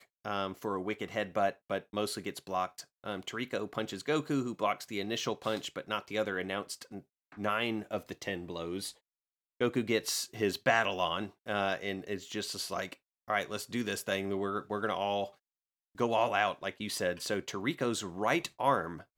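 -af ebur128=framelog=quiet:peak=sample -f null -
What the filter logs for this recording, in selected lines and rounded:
Integrated loudness:
  I:         -34.0 LUFS
  Threshold: -44.2 LUFS
Loudness range:
  LRA:         3.7 LU
  Threshold: -54.4 LUFS
  LRA low:   -36.1 LUFS
  LRA high:  -32.3 LUFS
Sample peak:
  Peak:      -11.3 dBFS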